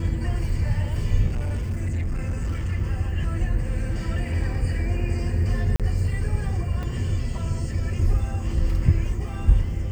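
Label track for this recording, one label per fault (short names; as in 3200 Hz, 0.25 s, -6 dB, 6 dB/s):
1.260000	2.730000	clipped -22 dBFS
5.760000	5.800000	gap 37 ms
6.830000	6.830000	gap 3.7 ms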